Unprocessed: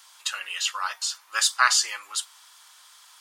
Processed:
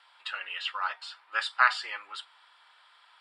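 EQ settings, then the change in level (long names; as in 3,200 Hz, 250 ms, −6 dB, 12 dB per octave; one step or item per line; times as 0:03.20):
moving average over 7 samples
high-frequency loss of the air 91 metres
notch filter 1,100 Hz, Q 11
0.0 dB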